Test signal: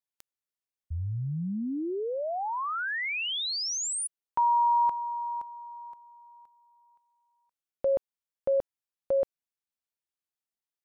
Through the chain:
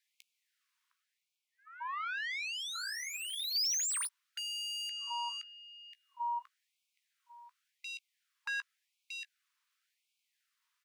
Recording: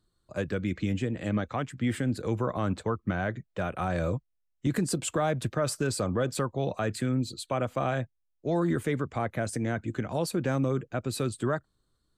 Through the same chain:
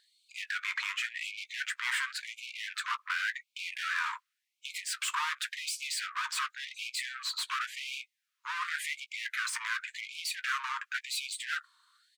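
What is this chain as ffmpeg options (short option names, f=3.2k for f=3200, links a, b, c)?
-filter_complex "[0:a]asplit=2[a][b];[b]highpass=f=720:p=1,volume=29dB,asoftclip=type=tanh:threshold=-15.5dB[c];[a][c]amix=inputs=2:normalize=0,lowpass=f=2k:p=1,volume=-6dB,afftfilt=real='re*lt(hypot(re,im),0.398)':imag='im*lt(hypot(re,im),0.398)':win_size=1024:overlap=0.75,asplit=2[d][e];[e]adelay=16,volume=-14dB[f];[d][f]amix=inputs=2:normalize=0,afftfilt=real='re*gte(b*sr/1024,890*pow(2200/890,0.5+0.5*sin(2*PI*0.91*pts/sr)))':imag='im*gte(b*sr/1024,890*pow(2200/890,0.5+0.5*sin(2*PI*0.91*pts/sr)))':win_size=1024:overlap=0.75,volume=-2dB"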